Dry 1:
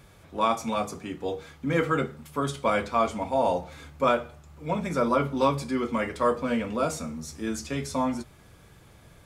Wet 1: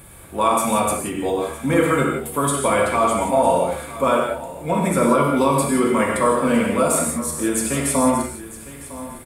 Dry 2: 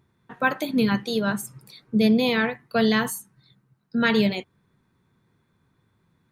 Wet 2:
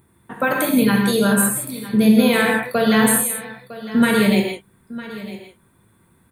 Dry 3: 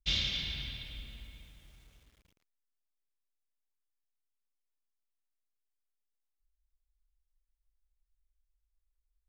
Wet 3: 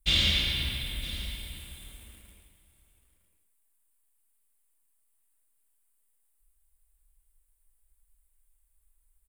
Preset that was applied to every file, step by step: resonant high shelf 7.3 kHz +8.5 dB, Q 3; peak limiter -17 dBFS; on a send: delay 956 ms -16 dB; on the sum: gated-style reverb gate 200 ms flat, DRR 0 dB; trim +7 dB

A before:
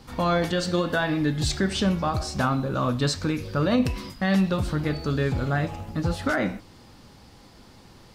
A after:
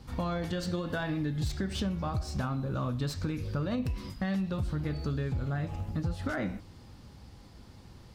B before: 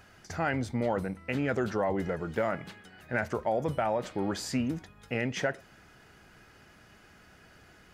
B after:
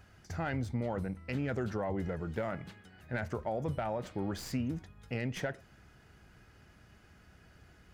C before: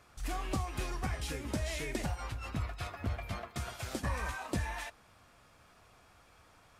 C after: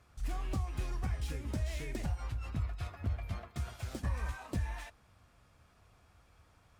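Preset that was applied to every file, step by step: tracing distortion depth 0.036 ms; peaking EQ 64 Hz +10.5 dB 2.8 oct; compression, threshold -22 dBFS; trim -6.5 dB

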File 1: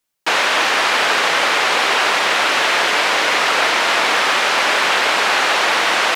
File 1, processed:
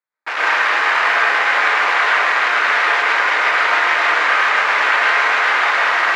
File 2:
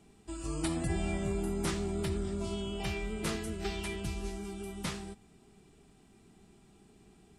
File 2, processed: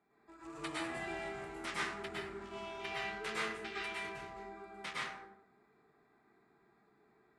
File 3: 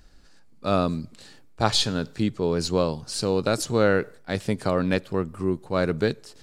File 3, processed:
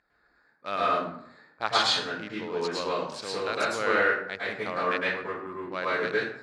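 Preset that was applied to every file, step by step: local Wiener filter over 15 samples; band-pass filter 2.1 kHz, Q 1.1; plate-style reverb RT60 0.66 s, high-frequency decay 0.6×, pre-delay 95 ms, DRR -6.5 dB

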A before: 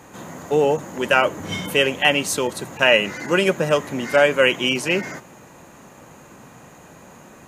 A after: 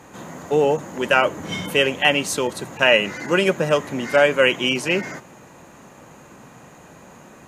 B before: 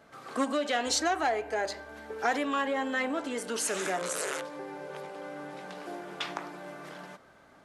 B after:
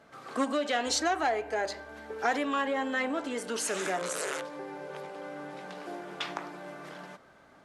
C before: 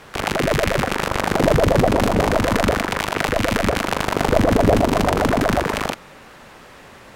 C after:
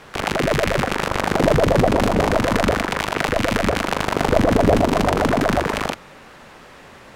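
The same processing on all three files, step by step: treble shelf 11 kHz -6 dB; hum notches 50/100 Hz

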